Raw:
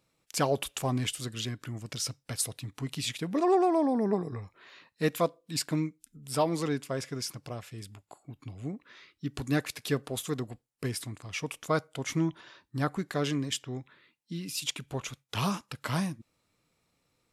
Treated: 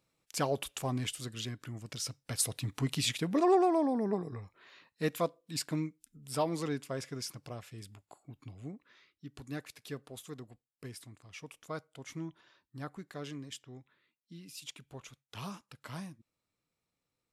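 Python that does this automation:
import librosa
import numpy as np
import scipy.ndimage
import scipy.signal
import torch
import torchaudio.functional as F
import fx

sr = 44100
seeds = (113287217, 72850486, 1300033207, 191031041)

y = fx.gain(x, sr, db=fx.line((2.1, -4.5), (2.7, 4.0), (4.05, -4.5), (8.4, -4.5), (9.27, -12.5)))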